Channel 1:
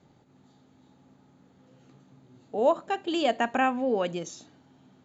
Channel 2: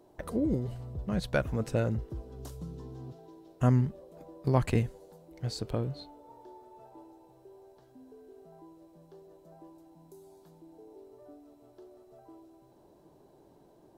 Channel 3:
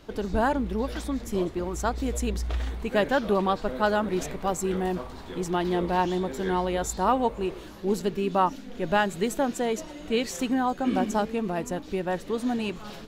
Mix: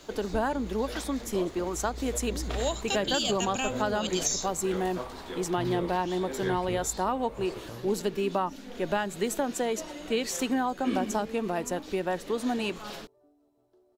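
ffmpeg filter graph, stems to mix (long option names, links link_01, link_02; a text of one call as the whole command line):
ffmpeg -i stem1.wav -i stem2.wav -i stem3.wav -filter_complex "[0:a]aexciter=amount=7.9:drive=9.8:freq=3000,volume=-5.5dB[link_01];[1:a]adelay=1950,volume=-12dB[link_02];[2:a]bass=frequency=250:gain=-8,treble=frequency=4000:gain=2,volume=2dB[link_03];[link_01][link_02][link_03]amix=inputs=3:normalize=0,acrossover=split=240[link_04][link_05];[link_05]acompressor=threshold=-26dB:ratio=4[link_06];[link_04][link_06]amix=inputs=2:normalize=0" out.wav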